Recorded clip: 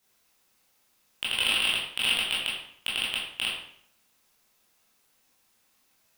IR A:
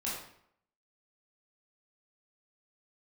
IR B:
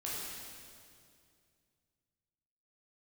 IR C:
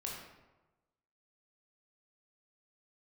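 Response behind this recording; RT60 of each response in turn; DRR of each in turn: A; 0.70 s, 2.3 s, 1.1 s; -7.0 dB, -7.0 dB, -3.0 dB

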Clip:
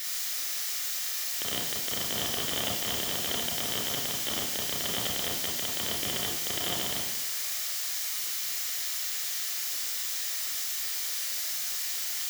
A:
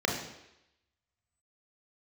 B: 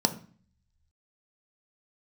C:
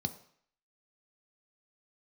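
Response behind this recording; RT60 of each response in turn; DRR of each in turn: A; 0.85 s, 0.45 s, 0.60 s; -1.0 dB, 7.0 dB, 8.0 dB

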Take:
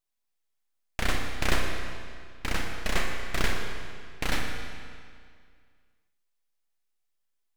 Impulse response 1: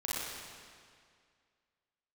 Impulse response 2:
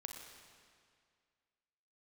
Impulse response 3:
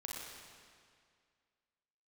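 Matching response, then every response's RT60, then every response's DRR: 2; 2.1 s, 2.1 s, 2.1 s; -8.0 dB, 2.5 dB, -3.5 dB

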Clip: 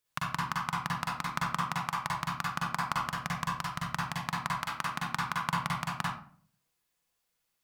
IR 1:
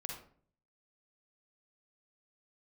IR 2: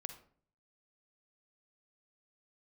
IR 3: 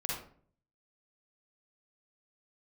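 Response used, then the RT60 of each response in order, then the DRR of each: 3; 0.50 s, 0.50 s, 0.50 s; 0.0 dB, 8.0 dB, -4.0 dB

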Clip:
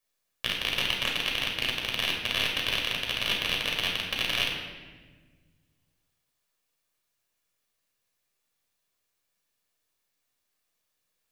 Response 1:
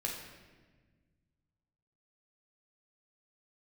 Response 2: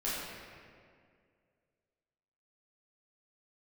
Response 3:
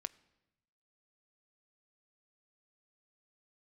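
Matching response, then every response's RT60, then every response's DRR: 1; 1.4 s, 2.2 s, 0.95 s; -1.0 dB, -10.0 dB, 13.5 dB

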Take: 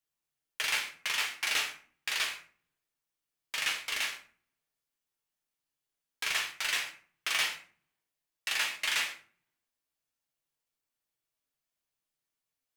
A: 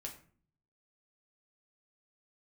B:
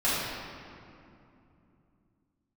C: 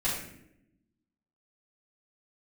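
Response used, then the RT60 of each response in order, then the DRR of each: A; 0.45 s, 2.7 s, no single decay rate; 0.0 dB, -11.0 dB, -11.5 dB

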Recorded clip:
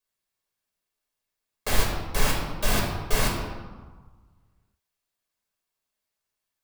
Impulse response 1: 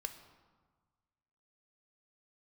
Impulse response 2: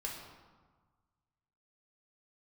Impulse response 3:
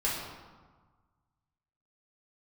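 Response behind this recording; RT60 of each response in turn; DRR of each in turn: 2; 1.5 s, 1.4 s, 1.4 s; 7.0 dB, -2.5 dB, -7.0 dB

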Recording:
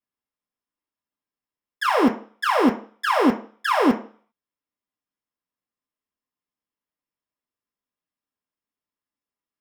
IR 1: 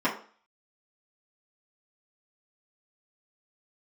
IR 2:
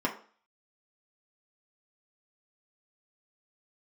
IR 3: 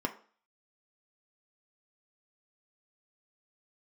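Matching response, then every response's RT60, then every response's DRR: 2; 0.45 s, 0.45 s, 0.45 s; -9.5 dB, -2.5 dB, 3.5 dB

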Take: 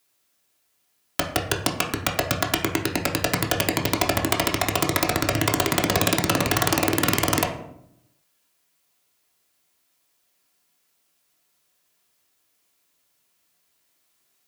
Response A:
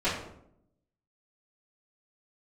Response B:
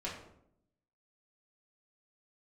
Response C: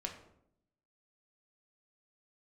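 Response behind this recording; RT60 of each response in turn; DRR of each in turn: C; 0.75 s, 0.75 s, 0.75 s; -15.5 dB, -7.0 dB, 1.0 dB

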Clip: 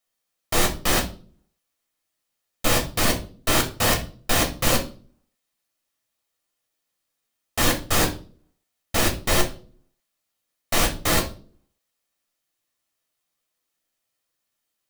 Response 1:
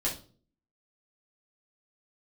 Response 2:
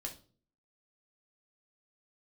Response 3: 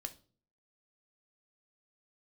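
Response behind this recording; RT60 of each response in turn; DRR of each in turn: 2; 0.40 s, 0.40 s, 0.45 s; -6.5 dB, 0.5 dB, 7.0 dB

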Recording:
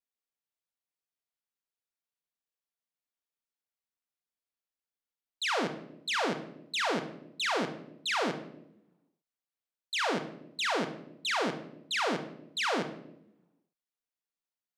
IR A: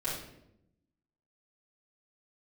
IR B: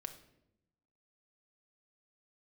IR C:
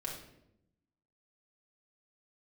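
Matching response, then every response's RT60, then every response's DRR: B; 0.80 s, 0.85 s, 0.80 s; -10.0 dB, 6.5 dB, -3.0 dB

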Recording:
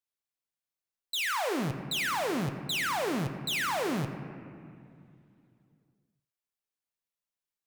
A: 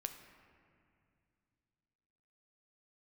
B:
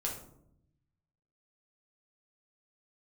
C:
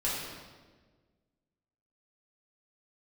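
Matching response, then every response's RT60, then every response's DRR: A; 2.4 s, 0.75 s, 1.4 s; 6.0 dB, -2.5 dB, -7.5 dB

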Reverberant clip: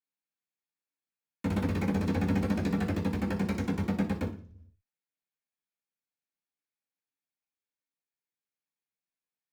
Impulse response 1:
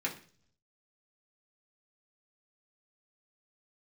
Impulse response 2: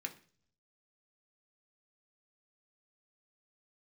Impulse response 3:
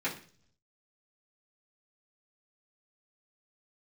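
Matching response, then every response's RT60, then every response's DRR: 3; 0.45 s, 0.45 s, 0.45 s; -4.0 dB, 3.0 dB, -10.0 dB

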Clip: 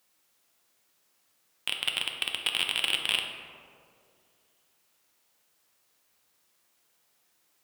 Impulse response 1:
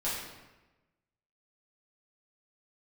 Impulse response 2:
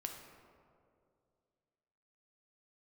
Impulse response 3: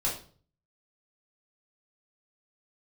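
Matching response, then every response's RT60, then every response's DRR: 2; 1.1 s, 2.4 s, 0.45 s; -9.5 dB, 2.5 dB, -5.5 dB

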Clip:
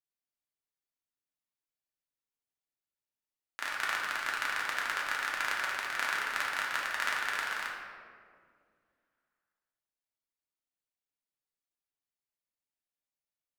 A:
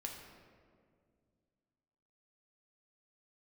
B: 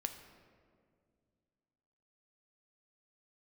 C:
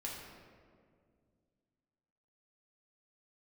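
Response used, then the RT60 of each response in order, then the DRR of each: C; 2.1 s, 2.1 s, 2.1 s; 0.0 dB, 6.5 dB, -4.0 dB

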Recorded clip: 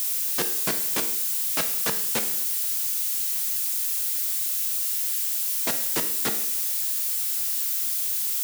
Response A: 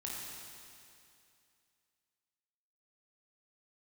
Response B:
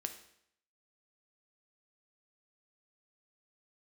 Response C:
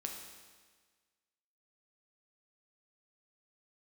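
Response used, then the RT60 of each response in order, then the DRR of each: B; 2.5 s, 0.70 s, 1.5 s; -4.5 dB, 6.0 dB, 1.5 dB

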